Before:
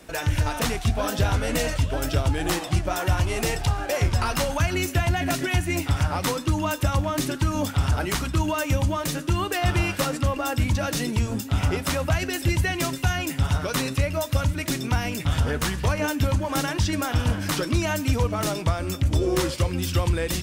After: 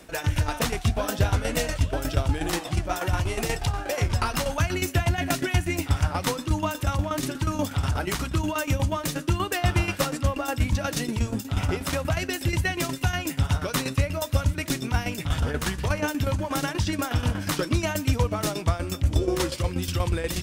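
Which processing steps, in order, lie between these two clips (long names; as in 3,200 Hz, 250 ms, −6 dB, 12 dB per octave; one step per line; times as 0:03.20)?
shaped tremolo saw down 8.3 Hz, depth 70%
level +1.5 dB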